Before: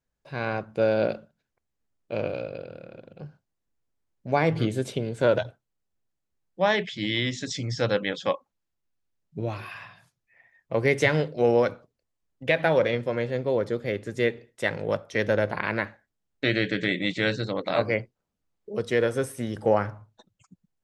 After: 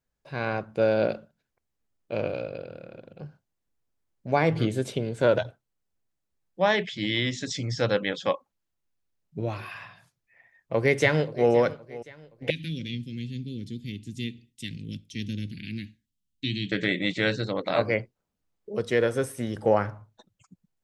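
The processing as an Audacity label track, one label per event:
10.750000	11.500000	delay throw 520 ms, feedback 40%, level −17.5 dB
12.500000	16.720000	elliptic band-stop filter 260–2,900 Hz, stop band 70 dB

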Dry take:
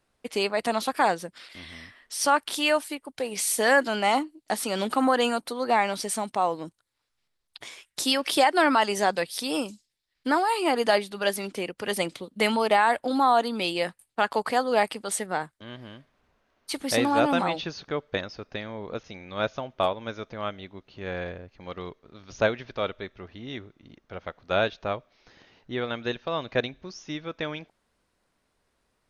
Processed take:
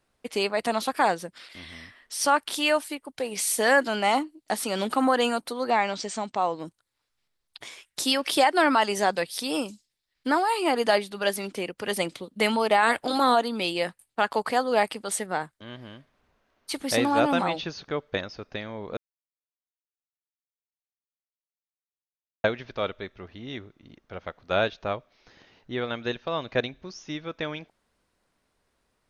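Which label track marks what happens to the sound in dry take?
5.700000	6.600000	elliptic low-pass filter 7,600 Hz
12.820000	13.340000	ceiling on every frequency bin ceiling under each frame's peak by 14 dB
18.970000	22.440000	silence

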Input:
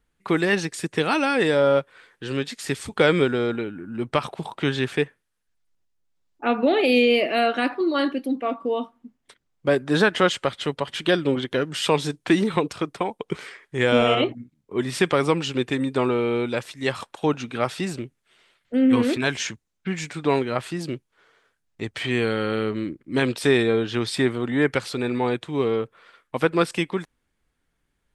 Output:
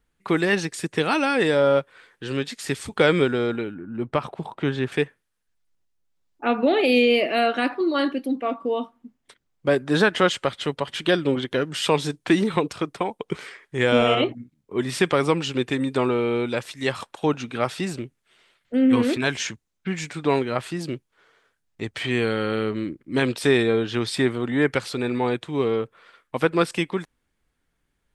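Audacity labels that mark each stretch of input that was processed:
3.740000	4.920000	high-shelf EQ 2,400 Hz −10.5 dB
14.890000	17.030000	one half of a high-frequency compander encoder only

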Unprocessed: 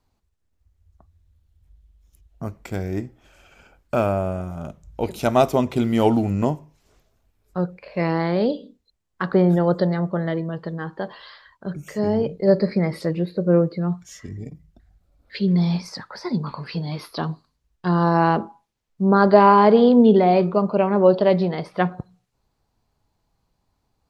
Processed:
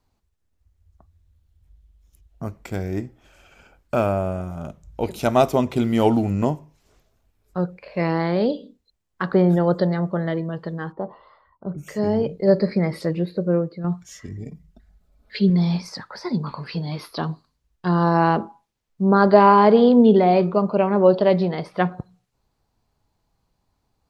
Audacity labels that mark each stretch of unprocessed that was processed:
10.920000	11.780000	Savitzky-Golay smoothing over 65 samples
13.370000	13.840000	fade out quadratic, to −7 dB
14.480000	15.500000	comb filter 4.7 ms, depth 60%

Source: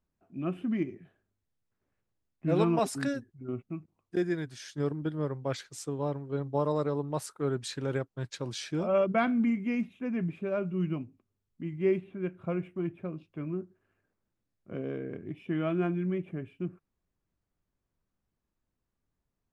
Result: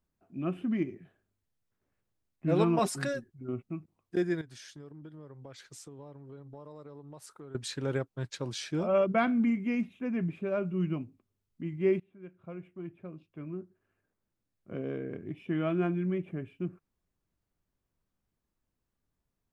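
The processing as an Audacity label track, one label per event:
2.810000	3.280000	comb filter 5.5 ms
4.410000	7.550000	downward compressor, threshold −45 dBFS
12.000000	14.940000	fade in, from −17.5 dB

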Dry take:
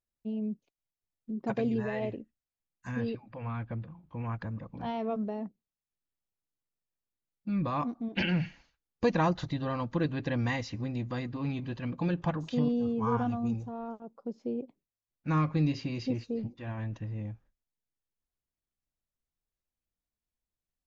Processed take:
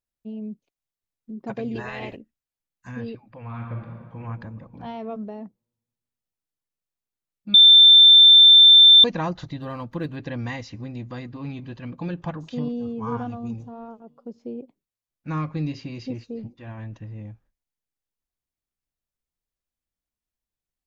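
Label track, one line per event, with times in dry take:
1.740000	2.150000	ceiling on every frequency bin ceiling under each frame's peak by 19 dB
3.430000	4.190000	thrown reverb, RT60 1.9 s, DRR 0 dB
7.540000	9.040000	beep over 3,560 Hz −7 dBFS
9.610000	10.160000	running median over 5 samples
12.570000	13.010000	delay throw 500 ms, feedback 30%, level −15 dB

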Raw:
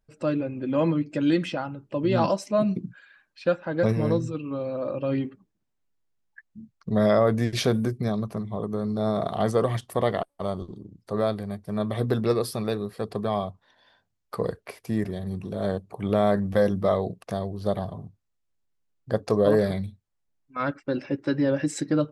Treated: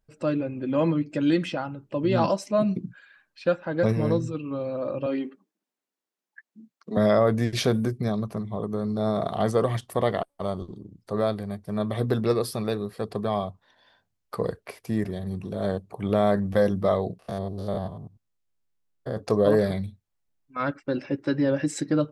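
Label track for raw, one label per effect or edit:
5.060000	6.970000	high-pass filter 240 Hz 24 dB per octave
17.190000	19.170000	spectrum averaged block by block every 100 ms

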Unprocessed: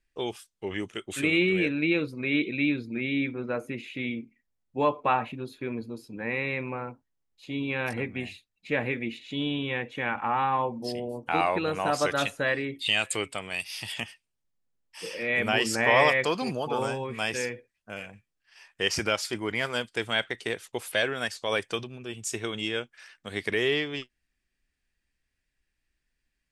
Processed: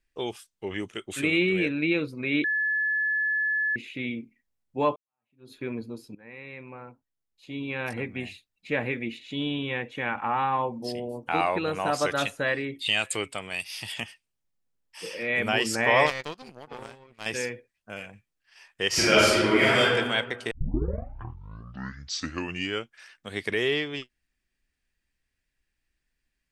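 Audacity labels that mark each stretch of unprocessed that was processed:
2.440000	3.760000	beep over 1,720 Hz −23 dBFS
4.960000	5.520000	fade in exponential
6.150000	8.260000	fade in, from −19 dB
16.060000	17.260000	power curve on the samples exponent 2
18.880000	19.910000	thrown reverb, RT60 1.4 s, DRR −9.5 dB
20.510000	20.510000	tape start 2.44 s

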